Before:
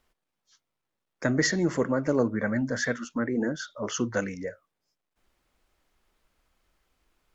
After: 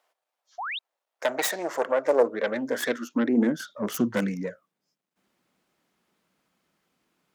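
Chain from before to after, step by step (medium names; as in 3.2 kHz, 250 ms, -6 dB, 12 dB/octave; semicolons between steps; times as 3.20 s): self-modulated delay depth 0.26 ms; high-pass sweep 650 Hz -> 180 Hz, 1.79–3.84 s; painted sound rise, 0.58–0.79 s, 650–4000 Hz -32 dBFS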